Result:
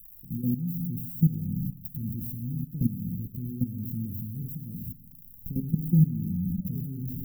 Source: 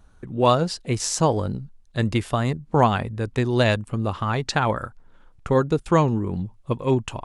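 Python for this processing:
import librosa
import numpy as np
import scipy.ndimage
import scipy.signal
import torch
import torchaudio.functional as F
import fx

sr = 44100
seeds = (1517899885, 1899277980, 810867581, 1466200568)

y = x + 0.5 * 10.0 ** (-20.0 / 20.0) * np.diff(np.sign(x), prepend=np.sign(x[:1]))
y = fx.recorder_agc(y, sr, target_db=-12.0, rise_db_per_s=14.0, max_gain_db=30)
y = fx.peak_eq(y, sr, hz=1700.0, db=8.0, octaves=0.29)
y = fx.rev_fdn(y, sr, rt60_s=1.3, lf_ratio=1.2, hf_ratio=0.85, size_ms=35.0, drr_db=3.0)
y = fx.level_steps(y, sr, step_db=14)
y = fx.spec_paint(y, sr, seeds[0], shape='fall', start_s=5.69, length_s=1.12, low_hz=370.0, high_hz=5900.0, level_db=-29.0)
y = scipy.signal.sosfilt(scipy.signal.cheby2(4, 60, [720.0, 5900.0], 'bandstop', fs=sr, output='sos'), y)
y = fx.dynamic_eq(y, sr, hz=200.0, q=1.8, threshold_db=-37.0, ratio=4.0, max_db=6)
y = y * librosa.db_to_amplitude(-3.5)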